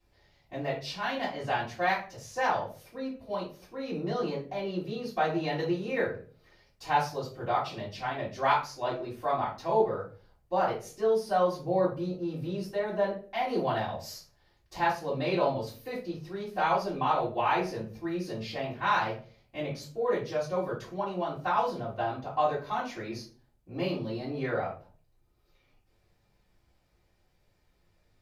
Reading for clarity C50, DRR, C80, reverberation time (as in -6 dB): 7.0 dB, -11.5 dB, 13.0 dB, 0.40 s